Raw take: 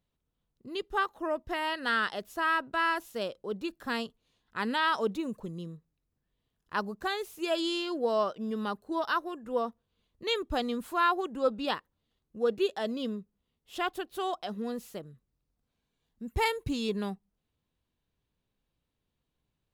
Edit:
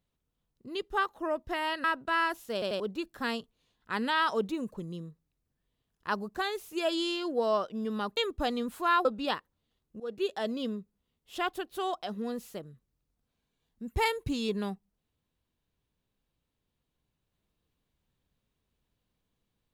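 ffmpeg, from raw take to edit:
ffmpeg -i in.wav -filter_complex "[0:a]asplit=8[link_01][link_02][link_03][link_04][link_05][link_06][link_07][link_08];[link_01]atrim=end=1.842[link_09];[link_02]atrim=start=2.498:end=3.282[link_10];[link_03]atrim=start=3.188:end=3.282[link_11];[link_04]atrim=start=3.188:end=3.282[link_12];[link_05]atrim=start=3.458:end=8.832[link_13];[link_06]atrim=start=10.288:end=11.172[link_14];[link_07]atrim=start=11.448:end=12.4,asetpts=PTS-STARTPTS,afade=type=out:start_time=0.948:duration=0.004:curve=hsin:silence=0.133352[link_15];[link_08]atrim=start=12.4,asetpts=PTS-STARTPTS,afade=type=in:duration=0.35:silence=0.133352[link_16];[link_09][link_10]acrossfade=duration=0.004:curve1=hsin:curve2=hsin[link_17];[link_17][link_11]acrossfade=duration=0.004:curve1=hsin:curve2=hsin[link_18];[link_18][link_12]acrossfade=duration=0.004:curve1=hsin:curve2=hsin[link_19];[link_19][link_13]acrossfade=duration=0.004:curve1=hsin:curve2=hsin[link_20];[link_20][link_14]acrossfade=duration=0.004:curve1=hsin:curve2=hsin[link_21];[link_15][link_16]concat=n=2:v=0:a=1[link_22];[link_21][link_22]acrossfade=duration=0.004:curve1=hsin:curve2=hsin" out.wav

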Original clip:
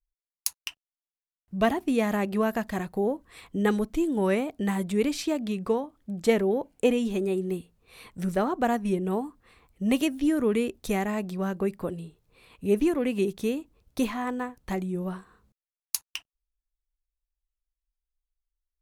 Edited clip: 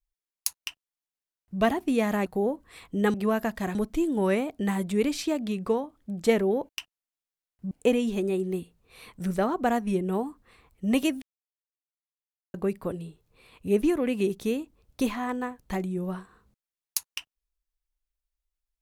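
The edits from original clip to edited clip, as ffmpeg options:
ffmpeg -i in.wav -filter_complex "[0:a]asplit=8[link_01][link_02][link_03][link_04][link_05][link_06][link_07][link_08];[link_01]atrim=end=2.262[link_09];[link_02]atrim=start=2.868:end=3.752[link_10];[link_03]atrim=start=2.258:end=2.872[link_11];[link_04]atrim=start=3.748:end=6.692[link_12];[link_05]atrim=start=0.578:end=1.602[link_13];[link_06]atrim=start=6.688:end=10.2,asetpts=PTS-STARTPTS,afade=type=out:start_time=3.508:duration=0.004:curve=hsin[link_14];[link_07]atrim=start=10.2:end=11.52,asetpts=PTS-STARTPTS,volume=0[link_15];[link_08]atrim=start=11.52,asetpts=PTS-STARTPTS,afade=type=in:duration=0.004:curve=hsin[link_16];[link_09][link_10]acrossfade=duration=0.004:curve1=hsin:curve2=hsin[link_17];[link_17][link_11]acrossfade=duration=0.004:curve1=hsin:curve2=hsin[link_18];[link_18][link_12]acrossfade=duration=0.004:curve1=hsin:curve2=hsin[link_19];[link_19][link_13]acrossfade=duration=0.004:curve1=hsin:curve2=hsin[link_20];[link_14][link_15][link_16]concat=n=3:v=0:a=1[link_21];[link_20][link_21]acrossfade=duration=0.004:curve1=hsin:curve2=hsin" out.wav

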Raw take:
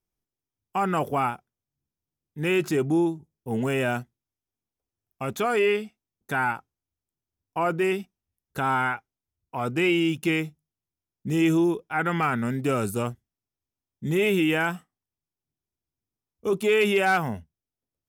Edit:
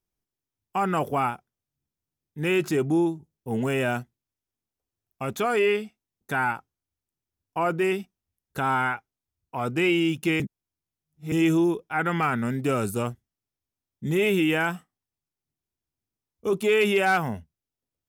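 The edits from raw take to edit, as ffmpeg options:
ffmpeg -i in.wav -filter_complex "[0:a]asplit=3[link_01][link_02][link_03];[link_01]atrim=end=10.402[link_04];[link_02]atrim=start=10.398:end=11.322,asetpts=PTS-STARTPTS,areverse[link_05];[link_03]atrim=start=11.318[link_06];[link_04][link_05]acrossfade=duration=0.004:curve1=hsin:curve2=hsin[link_07];[link_07][link_06]acrossfade=duration=0.004:curve1=hsin:curve2=hsin" out.wav

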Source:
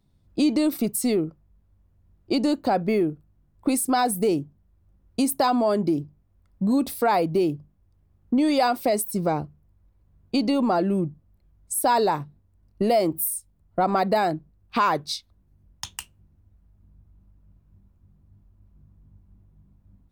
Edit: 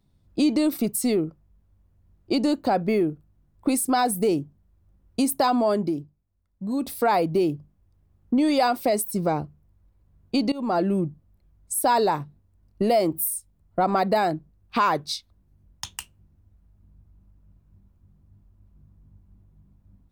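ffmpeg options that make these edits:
ffmpeg -i in.wav -filter_complex "[0:a]asplit=4[link_01][link_02][link_03][link_04];[link_01]atrim=end=6.17,asetpts=PTS-STARTPTS,afade=type=out:start_time=5.72:duration=0.45:silence=0.251189[link_05];[link_02]atrim=start=6.17:end=6.57,asetpts=PTS-STARTPTS,volume=-12dB[link_06];[link_03]atrim=start=6.57:end=10.52,asetpts=PTS-STARTPTS,afade=type=in:duration=0.45:silence=0.251189,afade=type=out:start_time=3.946:duration=0.004:curve=hsin:silence=0.0944061[link_07];[link_04]atrim=start=10.52,asetpts=PTS-STARTPTS,afade=type=in:duration=0.26:silence=0.0944061[link_08];[link_05][link_06][link_07][link_08]concat=n=4:v=0:a=1" out.wav

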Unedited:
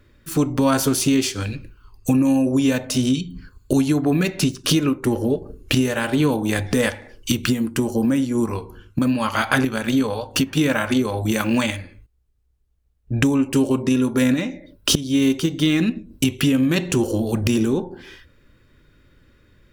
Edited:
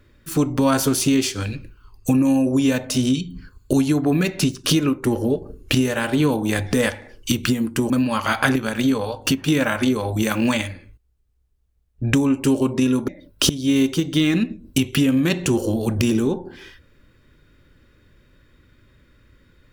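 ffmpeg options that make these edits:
ffmpeg -i in.wav -filter_complex "[0:a]asplit=3[link_01][link_02][link_03];[link_01]atrim=end=7.902[link_04];[link_02]atrim=start=8.988:end=14.172[link_05];[link_03]atrim=start=14.538[link_06];[link_04][link_05]acrossfade=duration=0.004:curve1=hsin:curve2=hsin[link_07];[link_07][link_06]acrossfade=duration=0.004:curve1=hsin:curve2=hsin" out.wav

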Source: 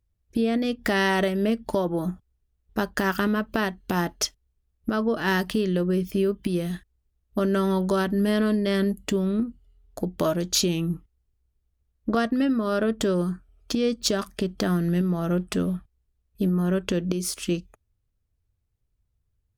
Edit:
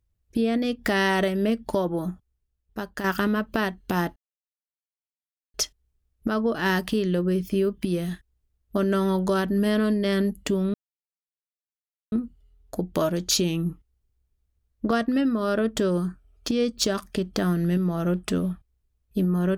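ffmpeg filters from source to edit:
ffmpeg -i in.wav -filter_complex "[0:a]asplit=4[link_01][link_02][link_03][link_04];[link_01]atrim=end=3.04,asetpts=PTS-STARTPTS,afade=type=out:start_time=1.85:duration=1.19:curve=qua:silence=0.446684[link_05];[link_02]atrim=start=3.04:end=4.16,asetpts=PTS-STARTPTS,afade=type=in:duration=0.004:curve=hsin:silence=0.446684,afade=type=out:start_time=1.116:duration=0.004:curve=hsin,apad=pad_dur=1.38[link_06];[link_03]atrim=start=4.16:end=9.36,asetpts=PTS-STARTPTS,afade=type=in:duration=0.004:curve=hsin,afade=type=out:start_time=5.196:duration=0.004:curve=hsin,apad=pad_dur=1.38[link_07];[link_04]atrim=start=9.36,asetpts=PTS-STARTPTS,afade=type=in:duration=0.004:curve=hsin[link_08];[link_05][link_06][link_07][link_08]concat=n=4:v=0:a=1" out.wav

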